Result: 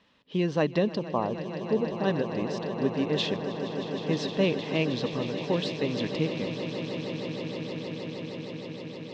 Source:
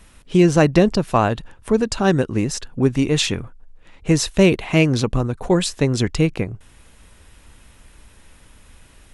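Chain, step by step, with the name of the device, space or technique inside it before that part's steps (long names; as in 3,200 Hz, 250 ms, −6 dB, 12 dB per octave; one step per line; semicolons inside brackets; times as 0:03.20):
0:00.99–0:02.04: low-pass filter 1,100 Hz 24 dB per octave
kitchen radio (loudspeaker in its box 230–4,200 Hz, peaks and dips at 350 Hz −7 dB, 730 Hz −6 dB, 1,400 Hz −10 dB, 2,300 Hz −7 dB)
echo that builds up and dies away 156 ms, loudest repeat 8, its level −14 dB
level −6.5 dB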